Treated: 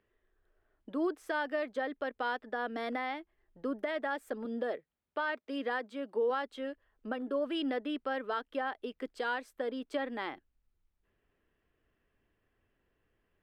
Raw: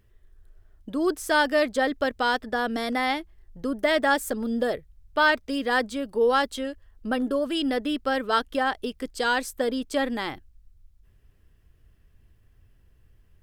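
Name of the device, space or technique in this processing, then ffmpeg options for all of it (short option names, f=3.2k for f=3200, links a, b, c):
DJ mixer with the lows and highs turned down: -filter_complex "[0:a]asettb=1/sr,asplit=3[a][b][c];[a]atrim=end=4.454[d];[b]atrim=start=4.45:end=6.3,asetpts=PTS-STARTPTS,afade=t=in:d=0.004:c=qsin,afade=t=out:st=1.846:d=0.004:c=qsin,highpass=150[e];[c]atrim=start=6.296[f];[d][e]acrossfade=d=0.004:c1=hsin:c2=qsin[g];[g][f]acrossfade=d=0.004:c1=qsin:c2=hsin,acrossover=split=230 3200:gain=0.112 1 0.141[h][i][j];[h][i][j]amix=inputs=3:normalize=0,alimiter=limit=-19.5dB:level=0:latency=1:release=330,volume=-4.5dB"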